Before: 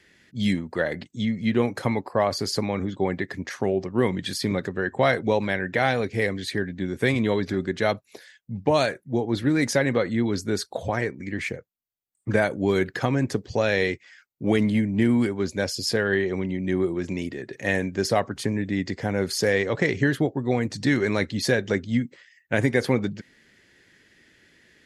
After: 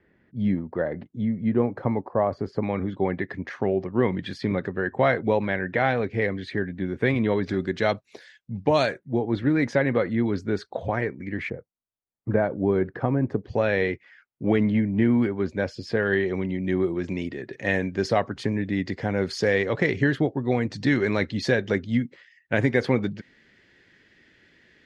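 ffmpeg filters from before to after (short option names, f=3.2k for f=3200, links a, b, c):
-af "asetnsamples=n=441:p=0,asendcmd='2.63 lowpass f 2500;7.44 lowpass f 5300;8.99 lowpass f 2500;11.5 lowpass f 1100;13.44 lowpass f 2300;16.03 lowpass f 4200',lowpass=1.1k"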